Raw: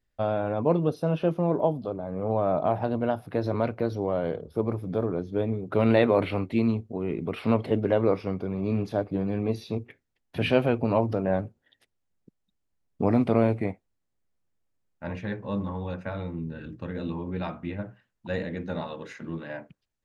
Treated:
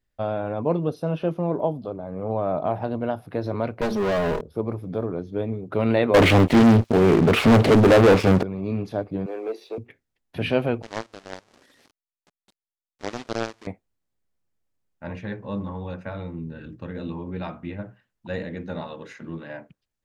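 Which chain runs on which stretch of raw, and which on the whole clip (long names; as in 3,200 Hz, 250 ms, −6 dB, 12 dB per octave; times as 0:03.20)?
0:03.81–0:04.41: lower of the sound and its delayed copy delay 4.8 ms + leveller curve on the samples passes 3
0:06.14–0:08.43: leveller curve on the samples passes 5 + delay with a high-pass on its return 221 ms, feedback 72%, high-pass 4,600 Hz, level −23 dB + highs frequency-modulated by the lows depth 0.43 ms
0:09.26–0:09.78: Butterworth high-pass 350 Hz + high-shelf EQ 2,400 Hz −10.5 dB + leveller curve on the samples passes 1
0:10.82–0:13.67: linear delta modulator 32 kbit/s, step −21 dBFS + low shelf with overshoot 200 Hz −11.5 dB, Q 1.5 + power curve on the samples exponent 3
whole clip: no processing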